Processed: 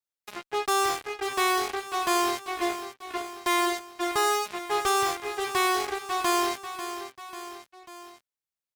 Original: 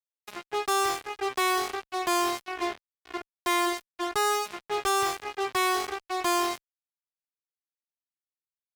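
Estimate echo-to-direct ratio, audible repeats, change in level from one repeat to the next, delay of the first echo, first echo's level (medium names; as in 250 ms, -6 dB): -9.5 dB, 3, -4.5 dB, 543 ms, -11.0 dB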